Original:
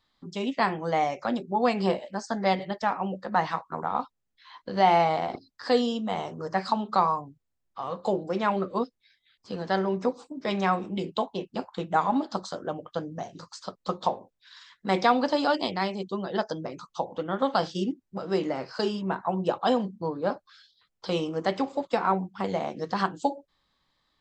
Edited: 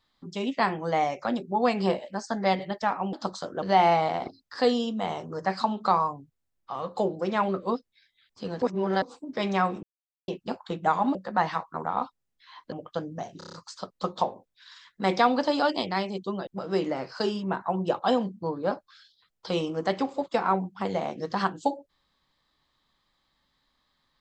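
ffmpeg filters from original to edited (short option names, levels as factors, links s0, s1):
-filter_complex "[0:a]asplit=15[s0][s1][s2][s3][s4][s5][s6][s7][s8][s9][s10][s11][s12][s13][s14];[s0]atrim=end=3.132[s15];[s1]atrim=start=12.228:end=12.722[s16];[s2]atrim=start=4.698:end=9.702[s17];[s3]atrim=start=9.698:end=10.102,asetpts=PTS-STARTPTS,areverse[s18];[s4]atrim=start=10.098:end=10.91,asetpts=PTS-STARTPTS,afade=t=out:st=0.808:d=0.004:c=hsin[s19];[s5]atrim=start=10.91:end=11.36,asetpts=PTS-STARTPTS,volume=0[s20];[s6]atrim=start=11.36:end=12.232,asetpts=PTS-STARTPTS,afade=t=in:d=0.004:c=hsin[s21];[s7]atrim=start=3.128:end=4.702[s22];[s8]atrim=start=12.718:end=13.412[s23];[s9]atrim=start=13.378:end=13.412[s24];[s10]atrim=start=13.378:end=13.412[s25];[s11]atrim=start=13.378:end=13.412[s26];[s12]atrim=start=13.378:end=13.412[s27];[s13]atrim=start=13.378:end=16.322[s28];[s14]atrim=start=18.058[s29];[s15][s16]acrossfade=d=0.004:c1=hsin:c2=hsin[s30];[s30][s17]acrossfade=d=0.004:c1=hsin:c2=hsin[s31];[s31][s18]acrossfade=d=0.004:c1=hsin:c2=hsin[s32];[s19][s20][s21]concat=n=3:v=0:a=1[s33];[s32][s33]acrossfade=d=0.004:c1=hsin:c2=hsin[s34];[s34][s22]acrossfade=d=0.004:c1=hsin:c2=hsin[s35];[s35][s23]acrossfade=d=0.004:c1=hsin:c2=hsin[s36];[s36][s24]acrossfade=d=0.004:c1=hsin:c2=hsin[s37];[s37][s25]acrossfade=d=0.004:c1=hsin:c2=hsin[s38];[s38][s26]acrossfade=d=0.004:c1=hsin:c2=hsin[s39];[s39][s27]acrossfade=d=0.004:c1=hsin:c2=hsin[s40];[s40][s28]acrossfade=d=0.004:c1=hsin:c2=hsin[s41];[s41][s29]acrossfade=d=0.004:c1=hsin:c2=hsin"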